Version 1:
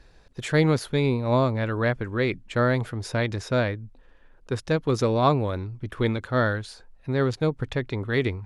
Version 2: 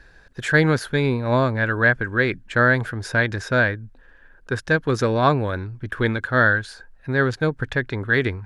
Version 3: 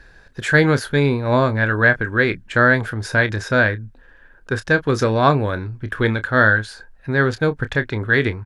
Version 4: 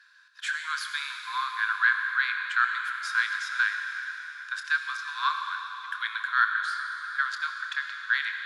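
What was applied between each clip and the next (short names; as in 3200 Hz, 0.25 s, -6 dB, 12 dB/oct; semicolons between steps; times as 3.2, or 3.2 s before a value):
bell 1600 Hz +14 dB 0.34 oct; gain +2 dB
doubler 28 ms -12 dB; gain +2.5 dB
step gate "xxxxx.xxxxx.xx" 142 bpm -12 dB; rippled Chebyshev high-pass 1000 Hz, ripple 6 dB; reverb RT60 4.1 s, pre-delay 53 ms, DRR 4 dB; gain -3.5 dB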